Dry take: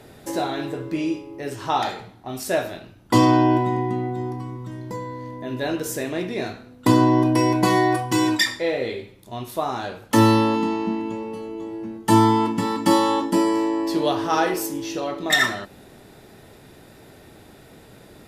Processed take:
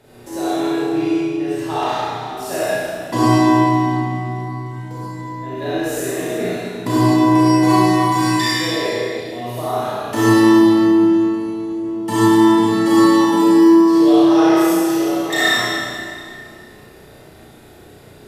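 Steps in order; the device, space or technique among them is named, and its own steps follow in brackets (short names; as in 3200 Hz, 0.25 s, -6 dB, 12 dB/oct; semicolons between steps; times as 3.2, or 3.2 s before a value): tunnel (flutter echo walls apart 5.7 m, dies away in 0.49 s; reverb RT60 2.3 s, pre-delay 36 ms, DRR -8.5 dB); gain -7 dB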